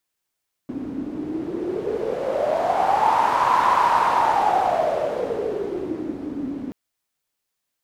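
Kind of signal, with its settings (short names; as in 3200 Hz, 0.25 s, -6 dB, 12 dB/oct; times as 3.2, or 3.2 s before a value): wind-like swept noise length 6.03 s, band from 270 Hz, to 990 Hz, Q 8.1, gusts 1, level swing 12.5 dB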